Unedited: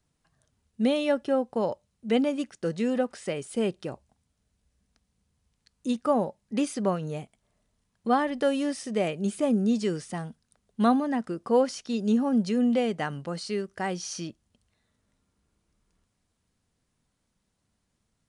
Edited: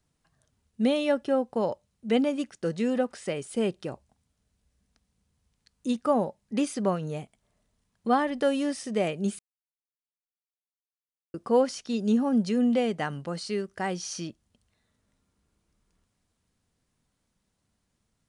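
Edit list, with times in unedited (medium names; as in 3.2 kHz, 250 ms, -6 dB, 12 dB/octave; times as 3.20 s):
9.39–11.34 s: mute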